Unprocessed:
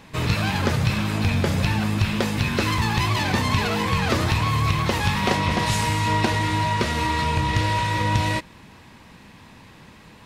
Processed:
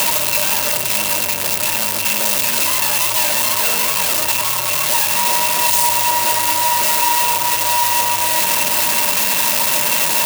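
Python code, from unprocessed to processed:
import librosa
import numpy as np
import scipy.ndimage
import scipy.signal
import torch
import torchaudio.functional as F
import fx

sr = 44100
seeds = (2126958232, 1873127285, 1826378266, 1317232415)

y = np.sign(x) * np.sqrt(np.mean(np.square(x)))
y = scipy.signal.sosfilt(scipy.signal.butter(2, 71.0, 'highpass', fs=sr, output='sos'), y)
y = fx.riaa(y, sr, side='recording')
y = fx.small_body(y, sr, hz=(600.0, 940.0, 2700.0), ring_ms=95, db=15)
y = y * 10.0 ** (-1.0 / 20.0)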